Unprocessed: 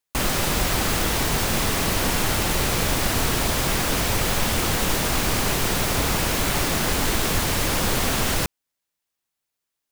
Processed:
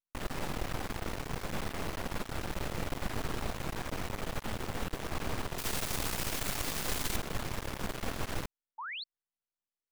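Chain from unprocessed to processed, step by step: treble shelf 3 kHz -12 dB, from 5.58 s +2.5 dB, from 7.16 s -9.5 dB; half-wave rectifier; 8.78–9.04 s: painted sound rise 830–4600 Hz -31 dBFS; trim -9 dB

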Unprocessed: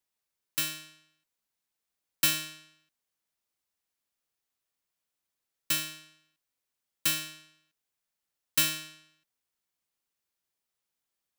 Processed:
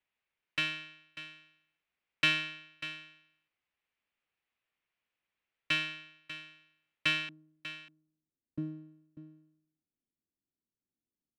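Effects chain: resonant low-pass 2.5 kHz, resonance Q 2.2, from 7.29 s 280 Hz; delay 593 ms -13.5 dB

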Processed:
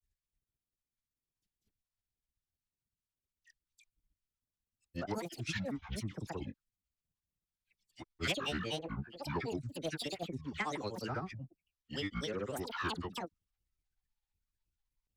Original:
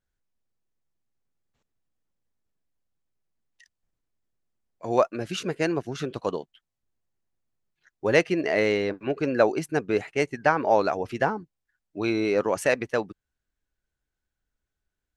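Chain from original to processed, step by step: coarse spectral quantiser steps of 15 dB; amplifier tone stack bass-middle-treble 6-0-2; phase dispersion lows, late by 65 ms, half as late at 1.6 kHz; granulator 108 ms, grains 16 per s, spray 203 ms, pitch spread up and down by 12 st; in parallel at -5 dB: sine folder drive 8 dB, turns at -29 dBFS; on the sum: trim +2 dB

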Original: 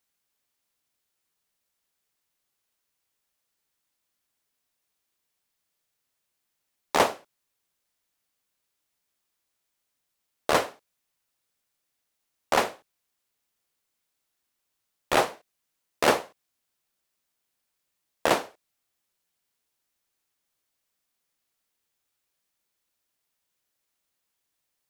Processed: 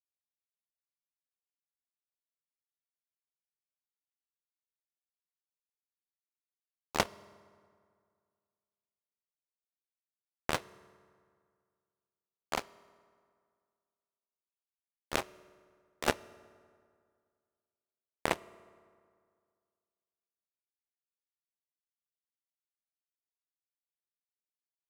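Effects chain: bass shelf 290 Hz +7 dB; power-law waveshaper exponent 3; reverberation RT60 2.1 s, pre-delay 3 ms, DRR 19 dB

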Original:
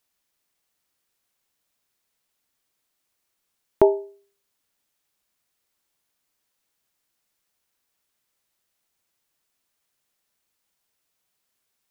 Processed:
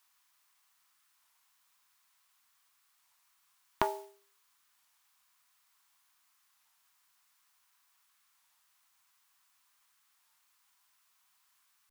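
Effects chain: in parallel at -4 dB: hard clipper -11.5 dBFS, distortion -12 dB; on the sum: modulation noise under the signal 30 dB; resonant low shelf 700 Hz -11.5 dB, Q 3; compression 6:1, threshold -25 dBFS, peak gain reduction 10 dB; band-stop 890 Hz, Q 12; warped record 33 1/3 rpm, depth 160 cents

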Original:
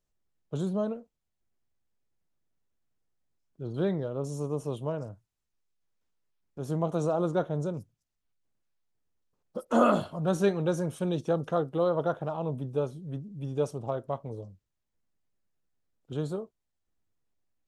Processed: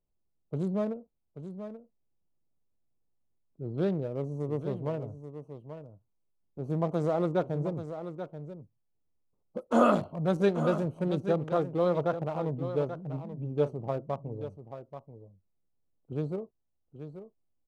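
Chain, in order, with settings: local Wiener filter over 25 samples; delay 834 ms -10.5 dB

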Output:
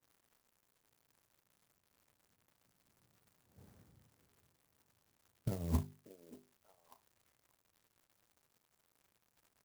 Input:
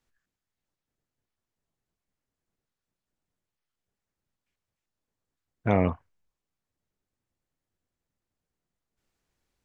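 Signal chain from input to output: Doppler pass-by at 3.69 s, 27 m/s, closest 2.3 m; high-pass 86 Hz 24 dB/octave; tilt EQ -4 dB/octave; hum notches 50/100/150/200/250/300/350/400 Hz; compressor with a negative ratio -48 dBFS, ratio -0.5; crackle 280 per s -72 dBFS; doubling 34 ms -12 dB; repeats whose band climbs or falls 586 ms, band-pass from 390 Hz, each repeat 1.4 oct, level -11.5 dB; sampling jitter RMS 0.089 ms; trim +15 dB

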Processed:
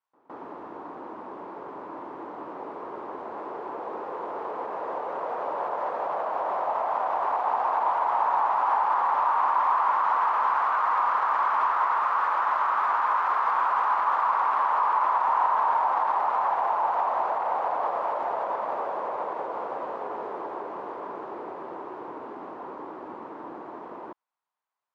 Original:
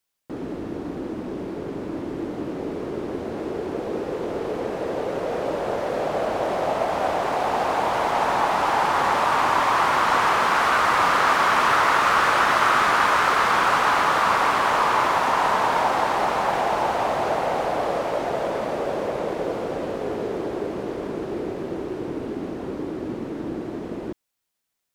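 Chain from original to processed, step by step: peak limiter -18 dBFS, peak gain reduction 11.5 dB; band-pass filter 990 Hz, Q 3.5; reverse echo 162 ms -23 dB; trim +6.5 dB

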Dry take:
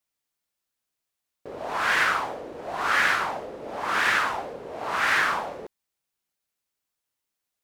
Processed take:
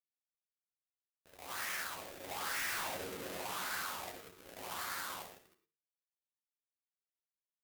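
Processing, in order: square wave that keeps the level; Doppler pass-by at 2.88 s, 47 m/s, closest 8.7 m; high-pass 45 Hz; hum notches 50/100/150/200/250/300/350/400/450 Hz; waveshaping leveller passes 3; tone controls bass +3 dB, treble -8 dB; compression 6:1, threshold -30 dBFS, peak gain reduction 12.5 dB; pre-emphasis filter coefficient 0.8; early reflections 11 ms -6 dB, 65 ms -13 dB; gated-style reverb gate 130 ms rising, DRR 11.5 dB

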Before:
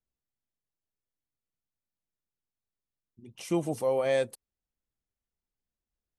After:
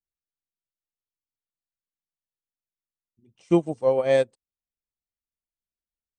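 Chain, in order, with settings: elliptic low-pass 8.6 kHz; tilt shelf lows +3 dB; upward expansion 2.5:1, over -36 dBFS; trim +9 dB

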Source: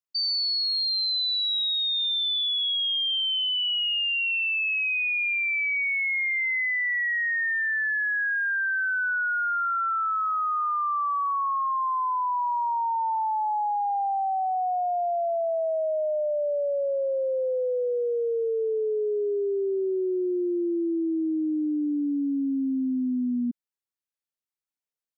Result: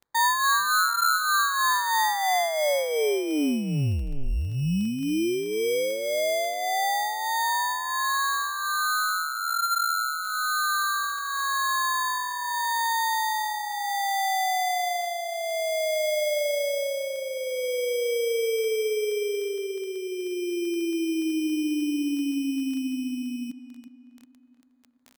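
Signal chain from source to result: tone controls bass -5 dB, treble +10 dB; comb 6.6 ms, depth 46%; in parallel at -2.5 dB: peak limiter -24 dBFS, peak gain reduction 10.5 dB; on the sum: sample-and-hold 16×; crackle 11 per s -29 dBFS; on a send: tape echo 365 ms, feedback 51%, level -12 dB, low-pass 1.9 kHz; on the sum: trim -5.5 dB

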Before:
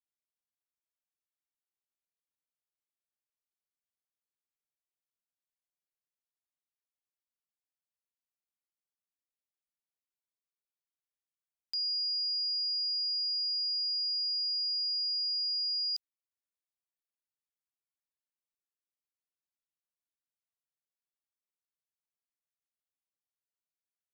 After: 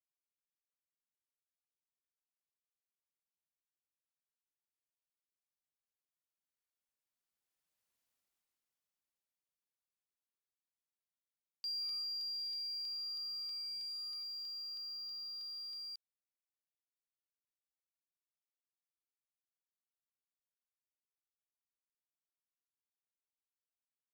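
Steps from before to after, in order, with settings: Doppler pass-by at 8.01 s, 7 m/s, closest 2.7 m; in parallel at -4.5 dB: companded quantiser 6-bit; on the sum: crackling interface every 0.32 s, samples 64, repeat, from 0.69 s; trim +8.5 dB

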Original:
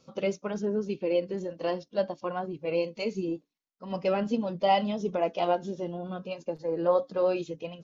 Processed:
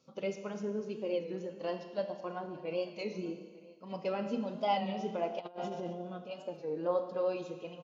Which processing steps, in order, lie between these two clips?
delay 895 ms -22.5 dB; Schroeder reverb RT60 1.5 s, combs from 25 ms, DRR 7 dB; 5.39–5.93 s: compressor with a negative ratio -32 dBFS, ratio -0.5; high-pass 100 Hz; warped record 33 1/3 rpm, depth 100 cents; trim -7.5 dB

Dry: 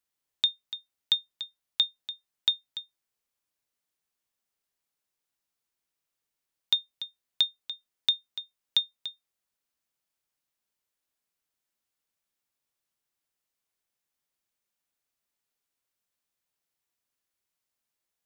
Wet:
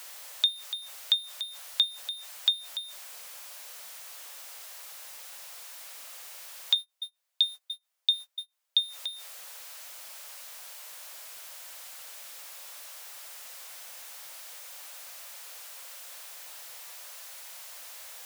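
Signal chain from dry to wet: jump at every zero crossing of -38 dBFS; 6.75–8.82 s: gate -34 dBFS, range -36 dB; steep high-pass 490 Hz 72 dB/octave

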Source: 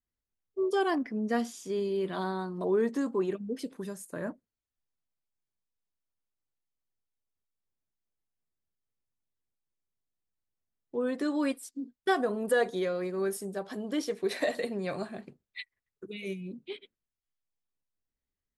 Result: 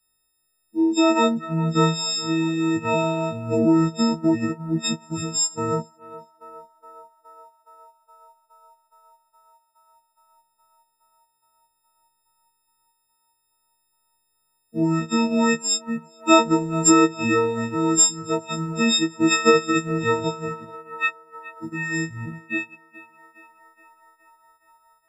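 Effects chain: partials quantised in pitch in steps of 6 st; on a send: band-passed feedback delay 309 ms, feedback 83%, band-pass 1.3 kHz, level -12 dB; on the sum: transient shaper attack +3 dB, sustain -8 dB; speed mistake 45 rpm record played at 33 rpm; trim +8.5 dB

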